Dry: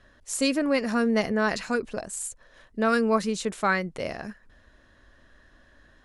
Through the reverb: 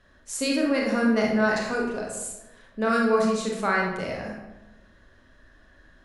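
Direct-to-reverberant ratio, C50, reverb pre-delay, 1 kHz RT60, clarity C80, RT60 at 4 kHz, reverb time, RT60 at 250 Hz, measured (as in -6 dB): -1.5 dB, 2.0 dB, 26 ms, 0.95 s, 5.5 dB, 0.65 s, 1.0 s, 1.2 s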